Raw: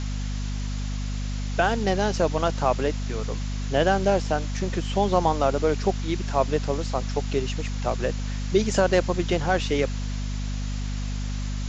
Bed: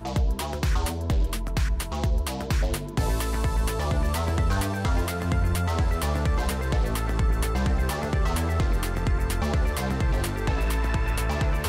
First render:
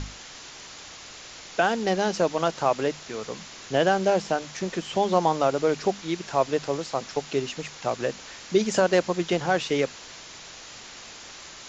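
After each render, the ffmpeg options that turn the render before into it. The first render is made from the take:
-af "bandreject=f=50:t=h:w=6,bandreject=f=100:t=h:w=6,bandreject=f=150:t=h:w=6,bandreject=f=200:t=h:w=6,bandreject=f=250:t=h:w=6"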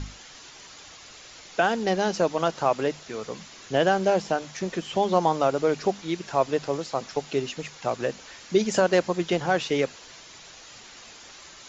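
-af "afftdn=nr=6:nf=-44"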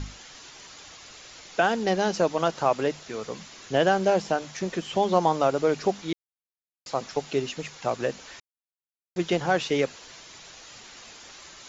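-filter_complex "[0:a]asplit=5[s0][s1][s2][s3][s4];[s0]atrim=end=6.13,asetpts=PTS-STARTPTS,afade=t=out:st=6.126:d=0.004:c=hsin[s5];[s1]atrim=start=6.13:end=6.86,asetpts=PTS-STARTPTS,volume=0[s6];[s2]atrim=start=6.86:end=8.4,asetpts=PTS-STARTPTS,afade=t=in:d=0.004:c=hsin,afade=t=out:st=1.536:d=0.004:c=hsin[s7];[s3]atrim=start=8.4:end=9.16,asetpts=PTS-STARTPTS,volume=0[s8];[s4]atrim=start=9.16,asetpts=PTS-STARTPTS,afade=t=in:d=0.004:c=hsin[s9];[s5][s6][s7][s8][s9]concat=n=5:v=0:a=1"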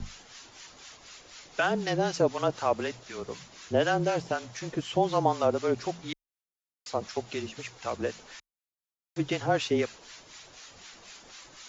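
-filter_complex "[0:a]acrossover=split=1000[s0][s1];[s0]aeval=exprs='val(0)*(1-0.7/2+0.7/2*cos(2*PI*4*n/s))':c=same[s2];[s1]aeval=exprs='val(0)*(1-0.7/2-0.7/2*cos(2*PI*4*n/s))':c=same[s3];[s2][s3]amix=inputs=2:normalize=0,afreqshift=-29"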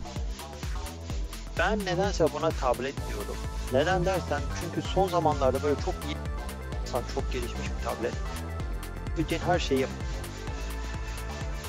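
-filter_complex "[1:a]volume=0.316[s0];[0:a][s0]amix=inputs=2:normalize=0"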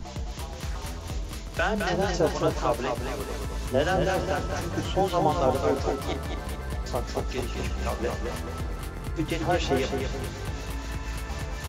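-filter_complex "[0:a]asplit=2[s0][s1];[s1]adelay=29,volume=0.237[s2];[s0][s2]amix=inputs=2:normalize=0,aecho=1:1:214|428|642|856|1070:0.562|0.247|0.109|0.0479|0.0211"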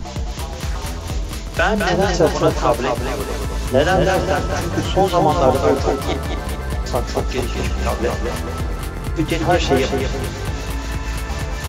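-af "volume=2.82,alimiter=limit=0.794:level=0:latency=1"

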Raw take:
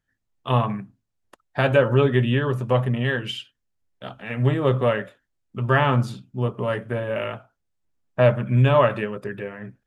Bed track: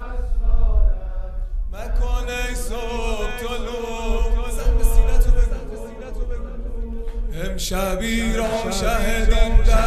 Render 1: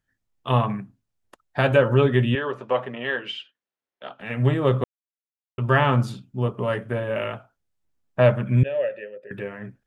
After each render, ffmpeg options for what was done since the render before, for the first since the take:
-filter_complex "[0:a]asettb=1/sr,asplit=3[s0][s1][s2];[s0]atrim=end=2.354[s3];[s1]atrim=start=2.35:end=4.2,asetpts=PTS-STARTPTS,afade=t=in:d=0.004:c=qsin,afade=t=out:st=1.846:d=0.004:c=qsin,highpass=390,lowpass=3800[s4];[s2]atrim=start=4.196[s5];[s3][s4]acrossfade=d=0.004:c1=hsin:c2=qsin[s6];[s6][s5]acrossfade=d=0.004:c1=qsin:c2=hsin,asettb=1/sr,asplit=3[s7][s8][s9];[s7]atrim=end=8.634[s10];[s8]atrim=start=8.63:end=9.31,asetpts=PTS-STARTPTS,afade=t=in:d=0.004:c=qsin,afade=t=out:st=0.676:d=0.004:c=qsin,asplit=3[s11][s12][s13];[s11]bandpass=f=530:t=q:w=8,volume=1[s14];[s12]bandpass=f=1840:t=q:w=8,volume=0.501[s15];[s13]bandpass=f=2480:t=q:w=8,volume=0.355[s16];[s14][s15][s16]amix=inputs=3:normalize=0[s17];[s9]atrim=start=9.306[s18];[s10][s17]acrossfade=d=0.004:c1=hsin:c2=qsin[s19];[s19][s18]acrossfade=d=0.004:c1=qsin:c2=hsin,asplit=3[s20][s21][s22];[s20]atrim=end=4.84,asetpts=PTS-STARTPTS,afade=t=out:st=4.836:d=0.004:c=hsin[s23];[s21]atrim=start=4.84:end=5.58,asetpts=PTS-STARTPTS,volume=0[s24];[s22]atrim=start=5.58,asetpts=PTS-STARTPTS,afade=t=in:d=0.004:c=hsin[s25];[s23][s24][s25]concat=n=3:v=0:a=1"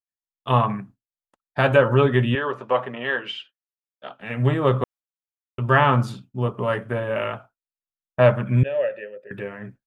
-af "adynamicequalizer=threshold=0.0224:dfrequency=1100:dqfactor=1.1:tfrequency=1100:tqfactor=1.1:attack=5:release=100:ratio=0.375:range=2.5:mode=boostabove:tftype=bell,agate=range=0.0224:threshold=0.0112:ratio=3:detection=peak"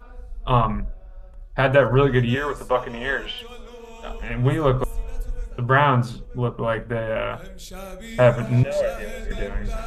-filter_complex "[1:a]volume=0.2[s0];[0:a][s0]amix=inputs=2:normalize=0"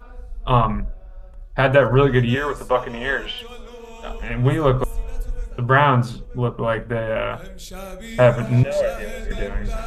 -af "volume=1.26,alimiter=limit=0.794:level=0:latency=1"

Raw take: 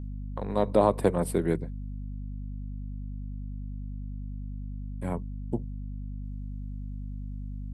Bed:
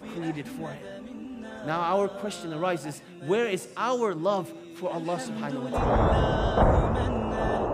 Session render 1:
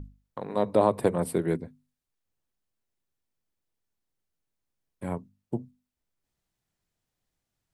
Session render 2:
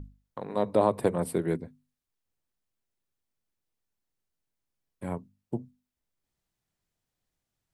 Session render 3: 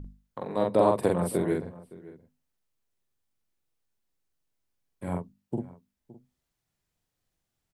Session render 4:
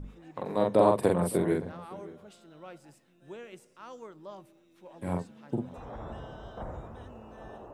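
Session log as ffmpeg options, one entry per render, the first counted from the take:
-af "bandreject=f=50:t=h:w=6,bandreject=f=100:t=h:w=6,bandreject=f=150:t=h:w=6,bandreject=f=200:t=h:w=6,bandreject=f=250:t=h:w=6"
-af "volume=0.841"
-filter_complex "[0:a]asplit=2[s0][s1];[s1]adelay=45,volume=0.75[s2];[s0][s2]amix=inputs=2:normalize=0,asplit=2[s3][s4];[s4]adelay=565.6,volume=0.112,highshelf=f=4000:g=-12.7[s5];[s3][s5]amix=inputs=2:normalize=0"
-filter_complex "[1:a]volume=0.106[s0];[0:a][s0]amix=inputs=2:normalize=0"

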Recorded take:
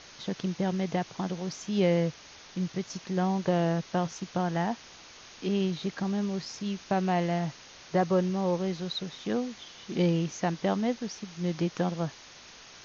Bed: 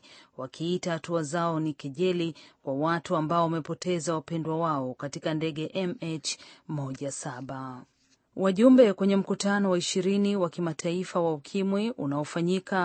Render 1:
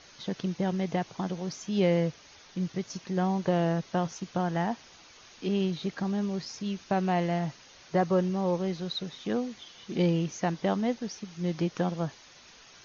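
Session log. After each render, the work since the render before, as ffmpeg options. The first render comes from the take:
-af "afftdn=nr=6:nf=-50"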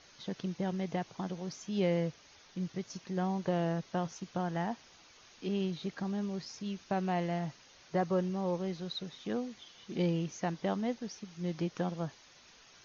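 -af "volume=0.531"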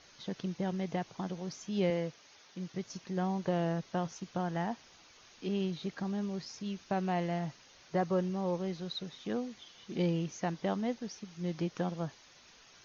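-filter_complex "[0:a]asettb=1/sr,asplit=3[s0][s1][s2];[s0]atrim=end=1.904[s3];[s1]atrim=start=1.9:end=2.74,asetpts=PTS-STARTPTS,afade=t=in:d=0.004:c=qsin,afade=t=out:st=0.836:d=0.004:c=qsin,highpass=f=240:p=1[s4];[s2]atrim=start=2.736[s5];[s3][s4]acrossfade=d=0.004:c1=hsin:c2=qsin[s6];[s6][s5]acrossfade=d=0.004:c1=qsin:c2=hsin"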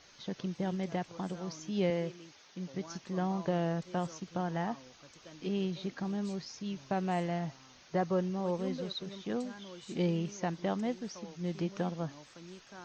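-filter_complex "[1:a]volume=0.0668[s0];[0:a][s0]amix=inputs=2:normalize=0"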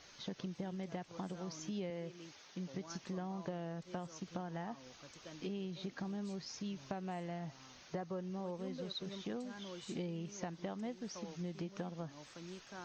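-af "acompressor=threshold=0.0112:ratio=6"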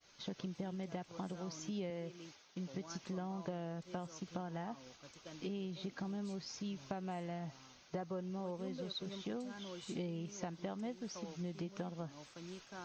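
-af "agate=range=0.0224:threshold=0.00224:ratio=3:detection=peak,bandreject=f=1800:w=16"

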